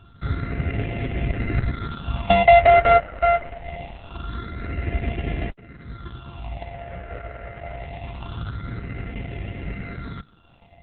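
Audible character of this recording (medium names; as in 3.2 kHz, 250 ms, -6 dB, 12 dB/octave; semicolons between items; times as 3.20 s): a buzz of ramps at a fixed pitch in blocks of 64 samples; phasing stages 6, 0.24 Hz, lowest notch 260–1100 Hz; a quantiser's noise floor 12-bit, dither none; Opus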